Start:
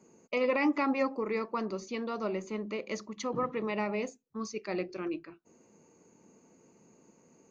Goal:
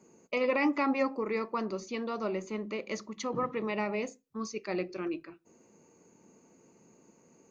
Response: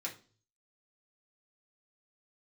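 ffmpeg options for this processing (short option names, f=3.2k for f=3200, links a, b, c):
-filter_complex "[0:a]asplit=2[a][b];[1:a]atrim=start_sample=2205,atrim=end_sample=6615[c];[b][c]afir=irnorm=-1:irlink=0,volume=-17dB[d];[a][d]amix=inputs=2:normalize=0"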